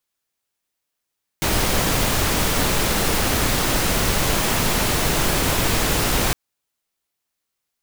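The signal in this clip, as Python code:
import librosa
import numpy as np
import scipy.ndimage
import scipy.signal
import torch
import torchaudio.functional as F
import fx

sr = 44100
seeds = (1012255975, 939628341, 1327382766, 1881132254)

y = fx.noise_colour(sr, seeds[0], length_s=4.91, colour='pink', level_db=-19.5)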